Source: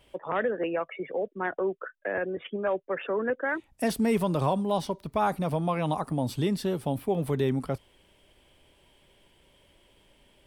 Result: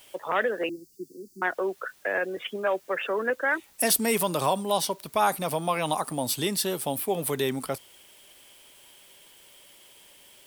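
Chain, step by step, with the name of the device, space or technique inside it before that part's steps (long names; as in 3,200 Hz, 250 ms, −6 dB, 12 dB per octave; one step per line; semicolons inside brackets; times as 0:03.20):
turntable without a phono preamp (RIAA equalisation recording; white noise bed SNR 30 dB)
0:00.69–0:01.42: Chebyshev band-stop filter 360–4,600 Hz, order 5
level +3.5 dB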